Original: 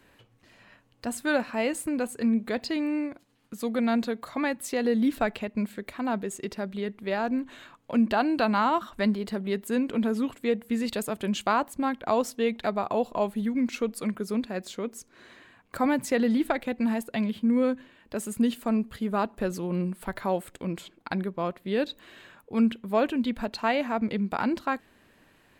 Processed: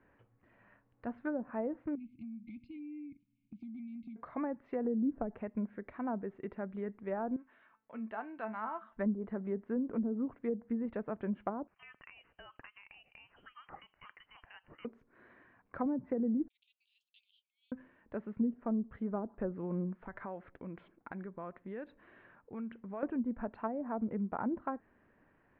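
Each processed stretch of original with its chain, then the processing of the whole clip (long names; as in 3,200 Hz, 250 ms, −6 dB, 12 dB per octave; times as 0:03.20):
0:01.95–0:04.16: linear-phase brick-wall band-stop 320–2,100 Hz + downward compressor 10 to 1, threshold −35 dBFS
0:07.36–0:08.97: low-pass filter 3,900 Hz 24 dB per octave + spectral tilt +3 dB per octave + tuned comb filter 220 Hz, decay 0.27 s, mix 70%
0:11.67–0:14.85: high-pass filter 490 Hz 24 dB per octave + downward compressor 12 to 1, threshold −34 dBFS + voice inversion scrambler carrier 3,400 Hz
0:16.48–0:17.72: Butterworth high-pass 3,000 Hz 72 dB per octave + spectral tilt +3.5 dB per octave
0:19.99–0:23.03: dynamic equaliser 1,700 Hz, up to +4 dB, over −42 dBFS, Q 0.86 + downward compressor 3 to 1, threshold −34 dBFS
whole clip: low-pass filter 1,900 Hz 24 dB per octave; treble cut that deepens with the level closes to 440 Hz, closed at −21.5 dBFS; level −7.5 dB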